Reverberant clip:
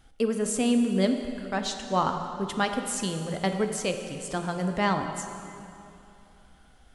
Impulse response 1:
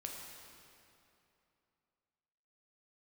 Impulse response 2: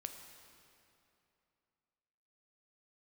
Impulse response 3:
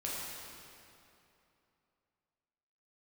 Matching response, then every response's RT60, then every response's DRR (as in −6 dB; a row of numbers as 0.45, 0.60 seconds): 2; 2.8, 2.8, 2.8 seconds; −0.5, 5.0, −6.5 decibels